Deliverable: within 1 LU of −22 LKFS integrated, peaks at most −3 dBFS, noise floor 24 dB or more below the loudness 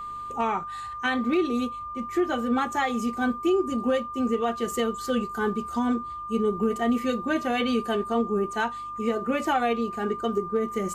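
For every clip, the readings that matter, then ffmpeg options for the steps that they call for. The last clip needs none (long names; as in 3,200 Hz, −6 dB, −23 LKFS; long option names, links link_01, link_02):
mains hum 50 Hz; hum harmonics up to 150 Hz; level of the hum −53 dBFS; interfering tone 1,200 Hz; level of the tone −33 dBFS; integrated loudness −26.5 LKFS; sample peak −15.0 dBFS; target loudness −22.0 LKFS
→ -af "bandreject=frequency=50:width_type=h:width=4,bandreject=frequency=100:width_type=h:width=4,bandreject=frequency=150:width_type=h:width=4"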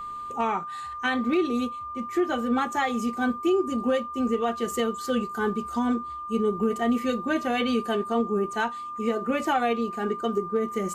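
mains hum none found; interfering tone 1,200 Hz; level of the tone −33 dBFS
→ -af "bandreject=frequency=1200:width=30"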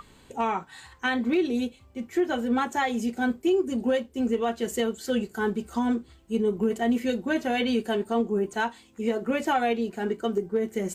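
interfering tone none found; integrated loudness −27.5 LKFS; sample peak −16.0 dBFS; target loudness −22.0 LKFS
→ -af "volume=5.5dB"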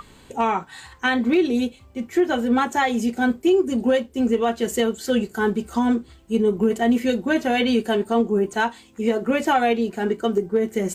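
integrated loudness −22.0 LKFS; sample peak −10.5 dBFS; background noise floor −51 dBFS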